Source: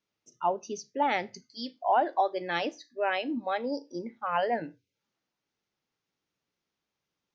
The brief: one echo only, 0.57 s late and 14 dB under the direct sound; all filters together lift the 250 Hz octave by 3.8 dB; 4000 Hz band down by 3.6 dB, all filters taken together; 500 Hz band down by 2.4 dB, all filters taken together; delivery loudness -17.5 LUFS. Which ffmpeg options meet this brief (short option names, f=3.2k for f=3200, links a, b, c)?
-af "equalizer=f=250:t=o:g=6,equalizer=f=500:t=o:g=-4.5,equalizer=f=4k:t=o:g=-5,aecho=1:1:570:0.2,volume=14dB"